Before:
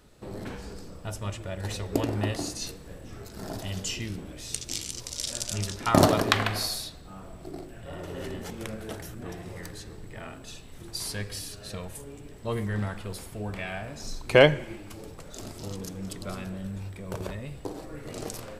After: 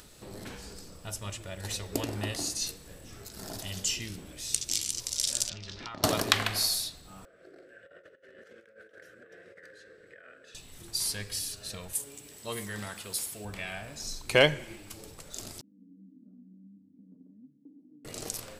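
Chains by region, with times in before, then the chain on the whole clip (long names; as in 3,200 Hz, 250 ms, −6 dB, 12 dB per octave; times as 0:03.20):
0:05.49–0:06.04: low-pass filter 4,600 Hz 24 dB per octave + downward compressor 8 to 1, threshold −34 dBFS
0:07.25–0:10.55: pair of resonant band-passes 900 Hz, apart 1.6 octaves + compressor whose output falls as the input rises −52 dBFS, ratio −0.5
0:11.93–0:13.45: high-pass filter 200 Hz 6 dB per octave + high-shelf EQ 3,800 Hz +8 dB
0:15.61–0:18.05: flat-topped band-pass 240 Hz, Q 6.4 + comb filter 6.5 ms, depth 81%
whole clip: high-shelf EQ 2,500 Hz +12 dB; upward compression, threshold −39 dBFS; level −6.5 dB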